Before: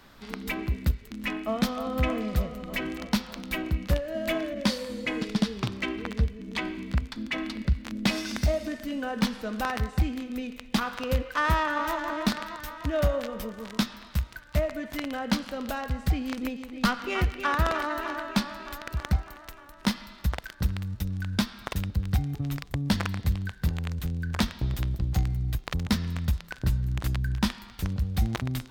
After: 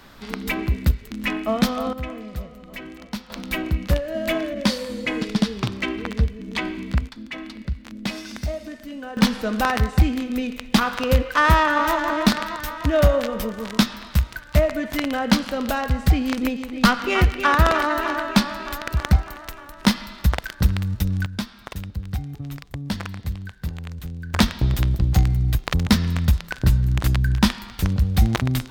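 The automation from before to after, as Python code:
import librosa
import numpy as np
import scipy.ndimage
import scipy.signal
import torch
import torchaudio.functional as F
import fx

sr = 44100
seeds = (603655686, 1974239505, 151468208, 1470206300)

y = fx.gain(x, sr, db=fx.steps((0.0, 6.5), (1.93, -5.0), (3.3, 5.0), (7.09, -2.5), (9.17, 8.5), (21.26, -2.0), (24.34, 8.5)))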